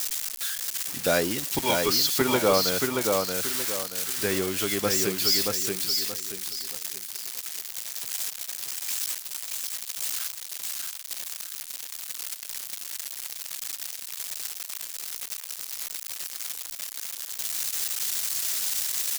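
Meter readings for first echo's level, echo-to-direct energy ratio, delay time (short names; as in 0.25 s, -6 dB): -3.5 dB, -3.0 dB, 0.628 s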